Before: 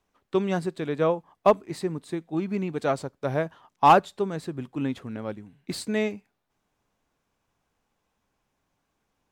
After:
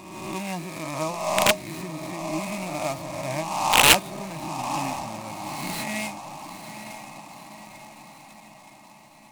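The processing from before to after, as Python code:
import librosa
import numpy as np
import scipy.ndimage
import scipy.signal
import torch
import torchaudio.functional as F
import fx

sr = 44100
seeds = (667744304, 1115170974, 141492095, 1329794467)

y = fx.spec_swells(x, sr, rise_s=1.4)
y = fx.high_shelf(y, sr, hz=3800.0, db=-6.5)
y = fx.fixed_phaser(y, sr, hz=2200.0, stages=8)
y = fx.comb_fb(y, sr, f0_hz=310.0, decay_s=0.19, harmonics='all', damping=0.0, mix_pct=70)
y = fx.echo_diffused(y, sr, ms=942, feedback_pct=57, wet_db=-10)
y = (np.mod(10.0 ** (18.5 / 20.0) * y + 1.0, 2.0) - 1.0) / 10.0 ** (18.5 / 20.0)
y = fx.band_shelf(y, sr, hz=3000.0, db=9.5, octaves=1.1)
y = fx.noise_mod_delay(y, sr, seeds[0], noise_hz=5500.0, depth_ms=0.044)
y = y * librosa.db_to_amplitude(6.0)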